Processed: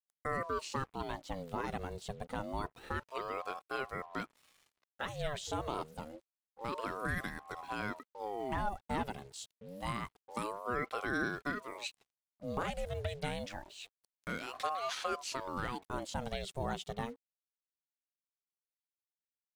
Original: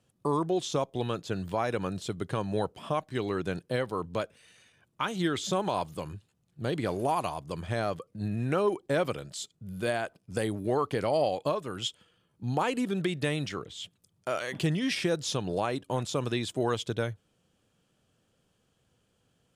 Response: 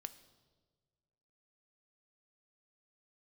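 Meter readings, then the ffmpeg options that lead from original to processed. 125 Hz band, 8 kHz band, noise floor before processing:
-11.0 dB, -8.0 dB, -73 dBFS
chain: -af "acrusher=bits=8:mix=0:aa=0.5,aeval=exprs='val(0)*sin(2*PI*600*n/s+600*0.55/0.27*sin(2*PI*0.27*n/s))':c=same,volume=0.531"

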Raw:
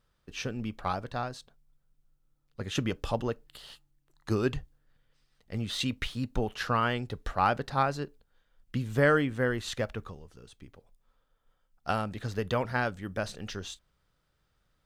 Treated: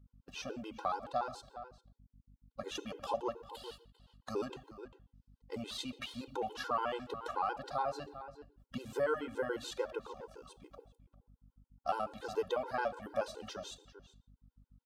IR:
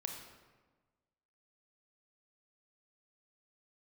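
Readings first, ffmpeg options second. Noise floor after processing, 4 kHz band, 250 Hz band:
under -85 dBFS, -7.5 dB, -12.0 dB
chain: -filter_complex "[0:a]equalizer=f=1900:t=o:w=0.67:g=-11.5,alimiter=limit=0.0891:level=0:latency=1:release=158,agate=range=0.112:threshold=0.00112:ratio=16:detection=peak,highpass=790,asplit=2[s0][s1];[s1]adelay=396.5,volume=0.141,highshelf=f=4000:g=-8.92[s2];[s0][s2]amix=inputs=2:normalize=0,asplit=2[s3][s4];[1:a]atrim=start_sample=2205,afade=t=out:st=0.22:d=0.01,atrim=end_sample=10143,lowshelf=f=270:g=11.5[s5];[s4][s5]afir=irnorm=-1:irlink=0,volume=0.335[s6];[s3][s6]amix=inputs=2:normalize=0,acompressor=threshold=0.00398:ratio=1.5,tiltshelf=f=1500:g=8,aeval=exprs='val(0)+0.000562*(sin(2*PI*50*n/s)+sin(2*PI*2*50*n/s)/2+sin(2*PI*3*50*n/s)/3+sin(2*PI*4*50*n/s)/4+sin(2*PI*5*50*n/s)/5)':c=same,afftfilt=real='re*gt(sin(2*PI*7*pts/sr)*(1-2*mod(floor(b*sr/1024/270),2)),0)':imag='im*gt(sin(2*PI*7*pts/sr)*(1-2*mod(floor(b*sr/1024/270),2)),0)':win_size=1024:overlap=0.75,volume=2.11"

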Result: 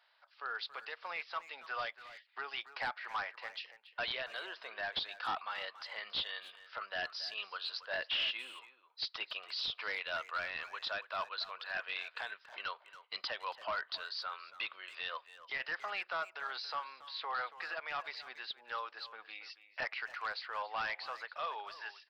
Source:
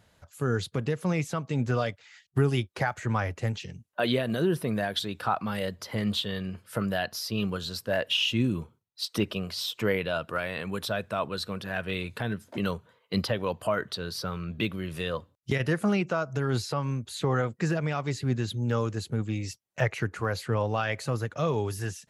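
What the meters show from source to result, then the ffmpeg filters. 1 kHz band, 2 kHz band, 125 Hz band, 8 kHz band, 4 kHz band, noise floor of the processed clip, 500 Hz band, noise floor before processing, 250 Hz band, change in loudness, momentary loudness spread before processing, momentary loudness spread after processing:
-6.0 dB, -4.0 dB, under -35 dB, -22.0 dB, -5.5 dB, -67 dBFS, -17.5 dB, -67 dBFS, -34.0 dB, -10.0 dB, 7 LU, 8 LU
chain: -filter_complex "[0:a]highpass=f=810:w=0.5412,highpass=f=810:w=1.3066,aresample=11025,asoftclip=type=hard:threshold=0.0376,aresample=44100,asplit=2[s0][s1];[s1]adelay=280,highpass=300,lowpass=3400,asoftclip=type=hard:threshold=0.0211,volume=0.224[s2];[s0][s2]amix=inputs=2:normalize=0,volume=0.708"

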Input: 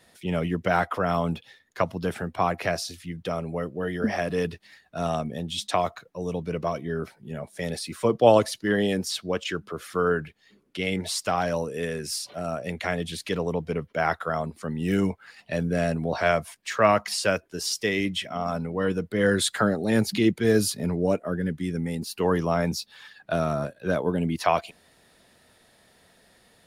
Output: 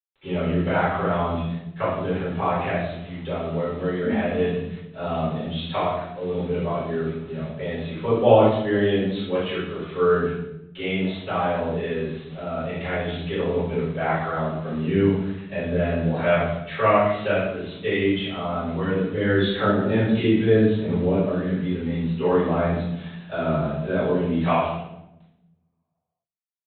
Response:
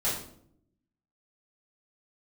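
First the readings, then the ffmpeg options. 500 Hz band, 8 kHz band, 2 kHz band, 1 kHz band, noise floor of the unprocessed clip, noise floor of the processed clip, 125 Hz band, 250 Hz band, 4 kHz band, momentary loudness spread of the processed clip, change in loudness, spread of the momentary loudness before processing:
+3.5 dB, under -40 dB, +0.5 dB, +1.5 dB, -61 dBFS, -65 dBFS, +4.5 dB, +3.5 dB, -2.5 dB, 10 LU, +2.5 dB, 10 LU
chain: -filter_complex "[0:a]aecho=1:1:73|146|219:0.0891|0.0374|0.0157,aresample=8000,acrusher=bits=7:mix=0:aa=0.000001,aresample=44100[s0];[1:a]atrim=start_sample=2205,asetrate=28224,aresample=44100[s1];[s0][s1]afir=irnorm=-1:irlink=0,volume=0.316"

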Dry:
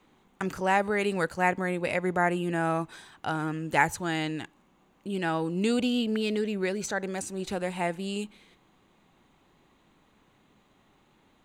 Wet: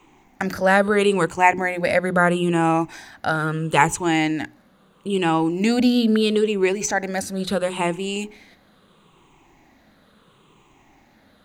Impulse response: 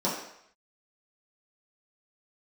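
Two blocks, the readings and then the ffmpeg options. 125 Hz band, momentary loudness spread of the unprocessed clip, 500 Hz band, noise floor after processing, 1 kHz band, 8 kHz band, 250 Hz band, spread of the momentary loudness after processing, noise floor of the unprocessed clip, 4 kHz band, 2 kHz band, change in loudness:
+7.5 dB, 10 LU, +9.0 dB, -57 dBFS, +8.0 dB, +9.5 dB, +8.5 dB, 11 LU, -65 dBFS, +8.5 dB, +7.5 dB, +8.5 dB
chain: -af "afftfilt=real='re*pow(10,10/40*sin(2*PI*(0.69*log(max(b,1)*sr/1024/100)/log(2)-(-0.75)*(pts-256)/sr)))':imag='im*pow(10,10/40*sin(2*PI*(0.69*log(max(b,1)*sr/1024/100)/log(2)-(-0.75)*(pts-256)/sr)))':win_size=1024:overlap=0.75,bandreject=f=60:t=h:w=6,bandreject=f=120:t=h:w=6,bandreject=f=180:t=h:w=6,bandreject=f=240:t=h:w=6,bandreject=f=300:t=h:w=6,bandreject=f=360:t=h:w=6,bandreject=f=420:t=h:w=6,volume=2.37"

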